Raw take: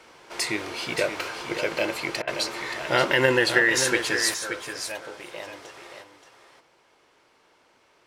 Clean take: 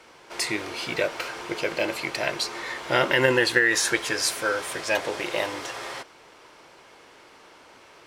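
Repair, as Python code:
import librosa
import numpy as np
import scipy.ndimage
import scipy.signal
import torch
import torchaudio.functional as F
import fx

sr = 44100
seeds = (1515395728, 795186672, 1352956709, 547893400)

y = fx.fix_interpolate(x, sr, at_s=(2.22,), length_ms=53.0)
y = fx.fix_echo_inverse(y, sr, delay_ms=577, level_db=-8.5)
y = fx.gain(y, sr, db=fx.steps((0.0, 0.0), (4.34, 11.0)))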